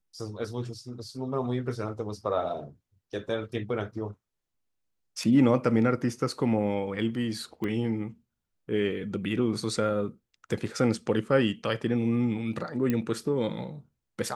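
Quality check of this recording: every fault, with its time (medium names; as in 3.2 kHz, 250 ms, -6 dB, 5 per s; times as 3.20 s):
7.64 s: pop -21 dBFS
12.90 s: pop -15 dBFS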